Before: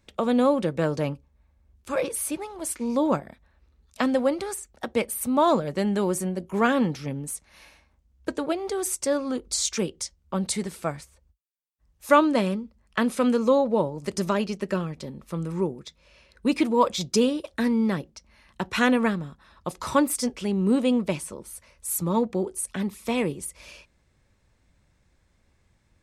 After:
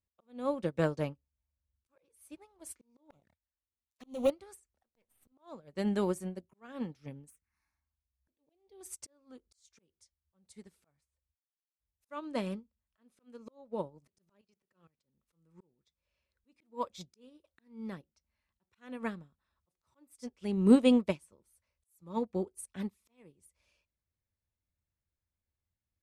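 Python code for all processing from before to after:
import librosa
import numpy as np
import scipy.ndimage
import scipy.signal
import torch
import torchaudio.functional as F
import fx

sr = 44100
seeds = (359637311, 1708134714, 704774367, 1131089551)

y = fx.chain(x, sr, fx.leveller(passes=3),
    fx.high_shelf(hz=4300.0, db=8.5),
    fx.env_flanger(rest_ms=9.0, full_db=-16.0), at=(3.1, 4.3))
y = fx.chain(y, sr, fx.halfwave_gain(db=-12.0),
    fx.resample_bad(factor=2, down='filtered', up='hold'), at=(4.86, 5.32))
y = fx.chain(y, sr, fx.median_filter(points=3),
    fx.env_phaser(low_hz=470.0, high_hz=1400.0, full_db=-27.5), at=(7.3, 8.81))
y = fx.chain(y, sr, fx.low_shelf(hz=260.0, db=-9.0),
    fx.level_steps(step_db=18),
    fx.auto_swell(attack_ms=123.0), at=(14.41, 15.03))
y = fx.peak_eq(y, sr, hz=83.0, db=8.5, octaves=0.62)
y = fx.auto_swell(y, sr, attack_ms=496.0)
y = fx.upward_expand(y, sr, threshold_db=-38.0, expansion=2.5)
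y = y * librosa.db_to_amplitude(2.0)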